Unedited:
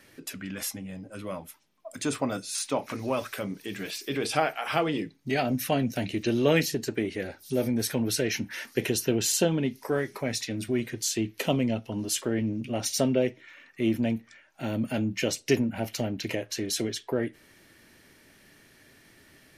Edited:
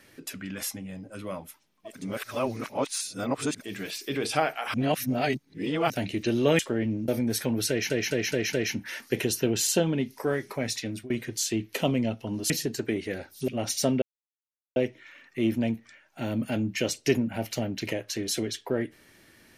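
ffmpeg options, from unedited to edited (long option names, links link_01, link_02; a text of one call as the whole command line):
ffmpeg -i in.wav -filter_complex "[0:a]asplit=15[link_01][link_02][link_03][link_04][link_05][link_06][link_07][link_08][link_09][link_10][link_11][link_12][link_13][link_14][link_15];[link_01]atrim=end=2.07[link_16];[link_02]atrim=start=1.83:end=3.73,asetpts=PTS-STARTPTS,areverse[link_17];[link_03]atrim=start=3.49:end=4.742[link_18];[link_04]atrim=start=4.738:end=5.902,asetpts=PTS-STARTPTS,areverse[link_19];[link_05]atrim=start=5.898:end=6.592[link_20];[link_06]atrim=start=12.148:end=12.642[link_21];[link_07]atrim=start=7.568:end=8.392[link_22];[link_08]atrim=start=8.178:end=8.392[link_23];[link_09]atrim=start=8.178:end=8.392[link_24];[link_10]atrim=start=8.178:end=8.392[link_25];[link_11]atrim=start=8.178:end=10.75,asetpts=PTS-STARTPTS,afade=type=out:start_time=2.282:duration=0.29:curve=qsin:silence=0.0707946[link_26];[link_12]atrim=start=10.75:end=12.152,asetpts=PTS-STARTPTS,afade=type=in:duration=0.004:curve=hsin:silence=0.0707946[link_27];[link_13]atrim=start=6.588:end=7.572[link_28];[link_14]atrim=start=12.638:end=13.18,asetpts=PTS-STARTPTS,afade=type=out:start_time=0.538:duration=0.004:curve=hsin,apad=pad_dur=0.74[link_29];[link_15]atrim=start=13.18,asetpts=PTS-STARTPTS,afade=type=in:duration=0.004:curve=hsin[link_30];[link_16][link_17]acrossfade=duration=0.24:curve1=tri:curve2=tri[link_31];[link_31][link_18]acrossfade=duration=0.24:curve1=tri:curve2=tri[link_32];[link_32][link_19]acrossfade=duration=0.004:curve1=hsin:curve2=hsin[link_33];[link_33][link_20]acrossfade=duration=0.004:curve1=hsin:curve2=hsin[link_34];[link_34][link_21]acrossfade=duration=0.004:curve1=hsin:curve2=hsin[link_35];[link_35][link_22]acrossfade=duration=0.004:curve1=hsin:curve2=hsin[link_36];[link_36][link_23]acrossfade=duration=0.004:curve1=hsin:curve2=hsin[link_37];[link_37][link_24]acrossfade=duration=0.004:curve1=hsin:curve2=hsin[link_38];[link_38][link_25]acrossfade=duration=0.004:curve1=hsin:curve2=hsin[link_39];[link_26][link_27]concat=n=2:v=0:a=1[link_40];[link_39][link_40]acrossfade=duration=0.004:curve1=hsin:curve2=hsin[link_41];[link_41][link_28]acrossfade=duration=0.004:curve1=hsin:curve2=hsin[link_42];[link_29][link_30]concat=n=2:v=0:a=1[link_43];[link_42][link_43]acrossfade=duration=0.004:curve1=hsin:curve2=hsin" out.wav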